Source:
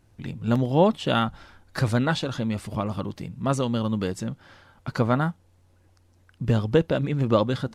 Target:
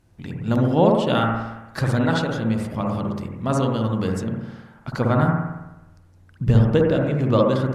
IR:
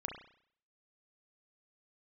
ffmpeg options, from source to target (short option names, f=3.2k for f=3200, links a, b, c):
-filter_complex "[0:a]asettb=1/sr,asplit=3[a][b][c];[a]atrim=end=5.174[d];[b]atrim=start=5.17:end=6.65,asetpts=PTS-STARTPTS,afade=t=in:d=0.004:c=qsin,afade=t=out:st=1.476:d=0.004:c=qsin,lowshelf=f=97:g=11.5[e];[c]atrim=start=6.646[f];[d][e]acrossfade=d=0.004:c1=hsin:c2=qsin[g];[g][f]acrossfade=d=0.004:c1=qsin:c2=hsin[h];[1:a]atrim=start_sample=2205,asetrate=26460,aresample=44100[i];[h][i]afir=irnorm=-1:irlink=0"